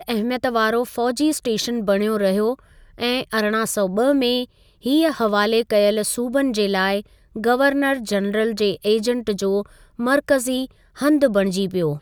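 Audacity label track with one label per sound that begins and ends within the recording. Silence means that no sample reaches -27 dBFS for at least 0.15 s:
3.000000	4.440000	sound
4.860000	7.000000	sound
7.360000	9.620000	sound
9.990000	10.650000	sound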